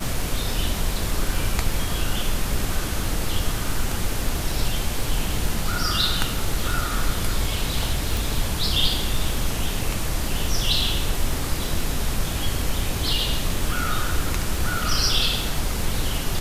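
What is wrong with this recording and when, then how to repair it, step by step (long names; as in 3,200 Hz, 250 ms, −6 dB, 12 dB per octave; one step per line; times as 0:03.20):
surface crackle 35 per second −29 dBFS
0:08.17: click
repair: click removal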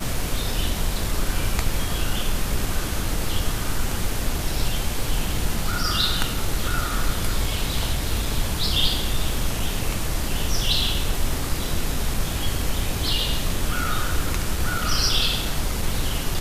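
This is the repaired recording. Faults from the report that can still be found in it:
0:08.17: click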